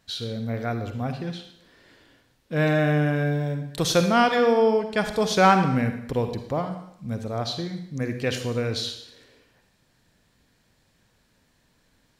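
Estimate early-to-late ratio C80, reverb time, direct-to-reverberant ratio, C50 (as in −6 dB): 10.5 dB, 0.70 s, 7.0 dB, 8.0 dB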